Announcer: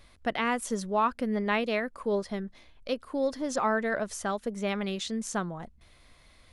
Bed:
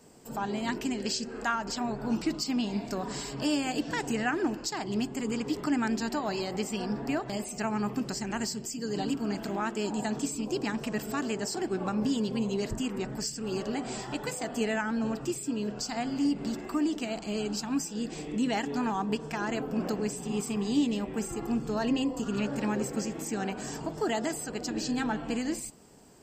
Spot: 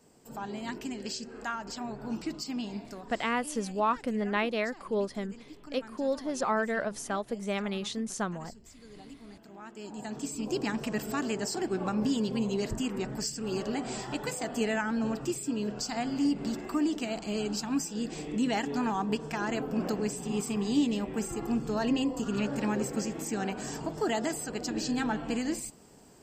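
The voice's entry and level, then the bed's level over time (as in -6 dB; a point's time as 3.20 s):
2.85 s, -1.5 dB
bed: 2.72 s -5.5 dB
3.36 s -18 dB
9.46 s -18 dB
10.49 s 0 dB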